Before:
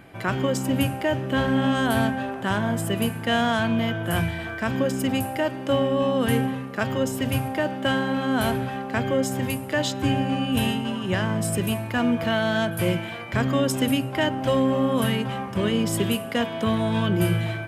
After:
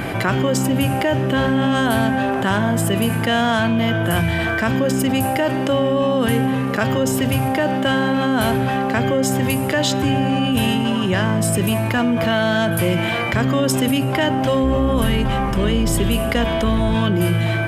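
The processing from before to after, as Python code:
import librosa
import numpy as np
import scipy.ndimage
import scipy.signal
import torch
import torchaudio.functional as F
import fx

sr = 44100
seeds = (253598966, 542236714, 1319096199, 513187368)

y = fx.octave_divider(x, sr, octaves=2, level_db=0.0, at=(14.63, 16.95))
y = fx.env_flatten(y, sr, amount_pct=70)
y = y * librosa.db_to_amplitude(2.0)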